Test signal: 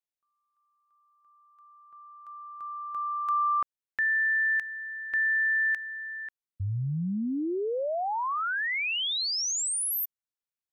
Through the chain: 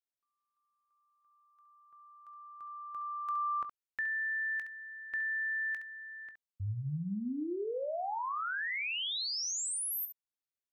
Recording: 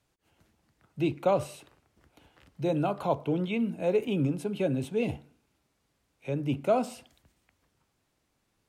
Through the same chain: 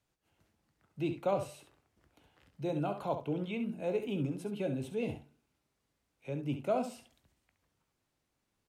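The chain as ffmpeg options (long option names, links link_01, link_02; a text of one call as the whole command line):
ffmpeg -i in.wav -af "aecho=1:1:20|68:0.2|0.335,volume=-7dB" out.wav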